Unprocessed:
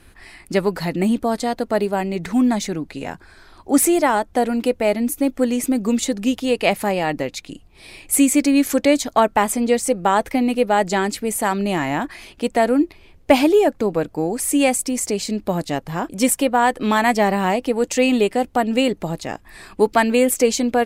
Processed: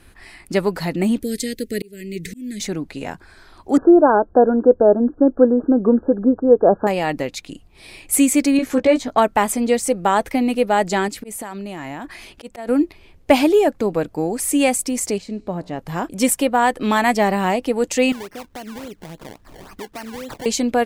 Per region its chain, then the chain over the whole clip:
1.22–2.60 s: Chebyshev band-stop 450–1900 Hz, order 3 + treble shelf 6.8 kHz +11 dB + slow attack 502 ms
3.77–6.87 s: brick-wall FIR low-pass 1.7 kHz + peaking EQ 430 Hz +9 dB 1.2 oct
8.57–9.18 s: low-pass 1.8 kHz 6 dB/octave + doubling 16 ms -3.5 dB
11.08–12.69 s: slow attack 184 ms + compression 16:1, threshold -26 dBFS
15.18–15.79 s: low-pass 1.5 kHz 6 dB/octave + feedback comb 60 Hz, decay 1.7 s, mix 40%
18.12–20.46 s: compression 3:1, threshold -35 dBFS + decimation with a swept rate 24× 3.6 Hz
whole clip: none

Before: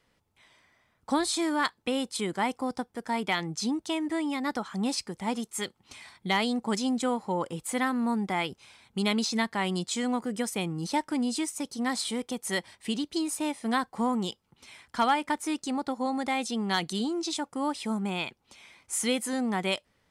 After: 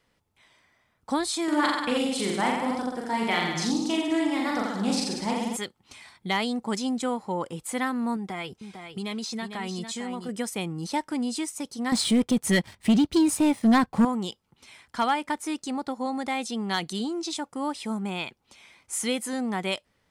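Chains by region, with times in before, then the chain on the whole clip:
1.44–5.57 s: hum notches 60/120/180 Hz + reverse bouncing-ball echo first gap 40 ms, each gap 1.1×, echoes 6, each echo -2 dB + loudspeaker Doppler distortion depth 0.1 ms
8.16–10.29 s: comb of notches 290 Hz + compression 3:1, threshold -30 dBFS + delay 451 ms -8 dB
11.92–14.05 s: tone controls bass +12 dB, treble -3 dB + waveshaping leveller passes 2
whole clip: none

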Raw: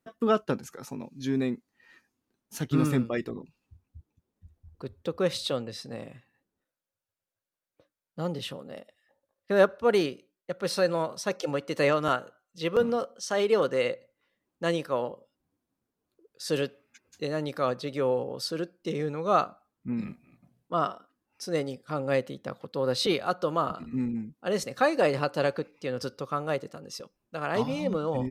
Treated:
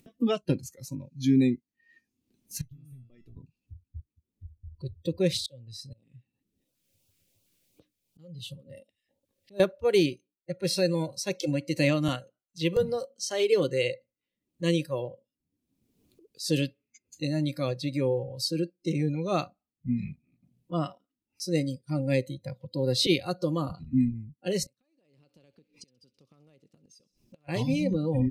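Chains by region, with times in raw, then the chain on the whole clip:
2.61–3.37 s: bass shelf 200 Hz +7.5 dB + compression 5:1, threshold -29 dBFS + feedback comb 670 Hz, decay 0.39 s, mix 90%
5.32–9.60 s: slow attack 544 ms + LFO notch saw up 2.8 Hz 520–2200 Hz
24.66–27.49 s: compression, threshold -29 dBFS + inverted gate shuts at -34 dBFS, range -26 dB + feedback echo behind a high-pass 65 ms, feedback 75%, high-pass 2.6 kHz, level -18 dB
whole clip: spectral noise reduction 18 dB; FFT filter 260 Hz 0 dB, 850 Hz -15 dB, 1.5 kHz -18 dB, 2.4 kHz -4 dB; upward compressor, threshold -51 dBFS; trim +7.5 dB

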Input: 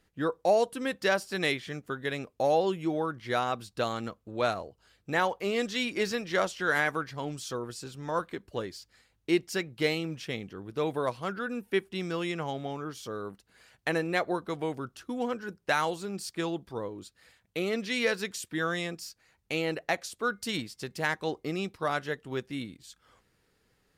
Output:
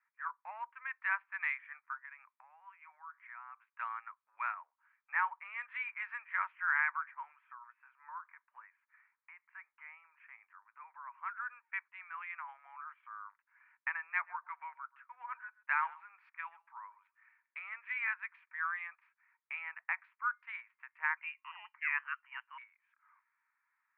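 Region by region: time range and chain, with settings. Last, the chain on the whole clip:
2.02–3.74 s: inverse Chebyshev high-pass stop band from 160 Hz, stop band 60 dB + compression 3:1, threshold -43 dBFS
7.37–11.18 s: compression 2.5:1, threshold -34 dBFS + distance through air 370 m + tape noise reduction on one side only encoder only
14.03–17.70 s: tone controls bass +6 dB, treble +5 dB + delay 133 ms -21 dB
21.17–22.58 s: tilt EQ +2 dB/octave + frequency inversion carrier 3.2 kHz
whole clip: local Wiener filter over 9 samples; Chebyshev band-pass 930–2400 Hz, order 4; trim -2 dB

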